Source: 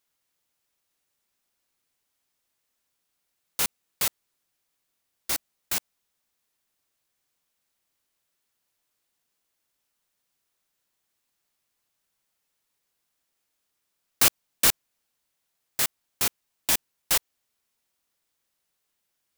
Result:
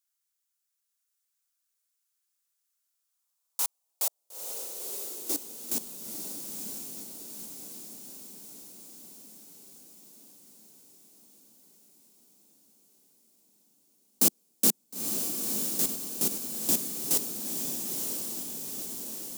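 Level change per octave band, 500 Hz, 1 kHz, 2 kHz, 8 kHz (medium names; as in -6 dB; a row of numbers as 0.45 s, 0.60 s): +1.0 dB, -8.0 dB, -14.0 dB, 0.0 dB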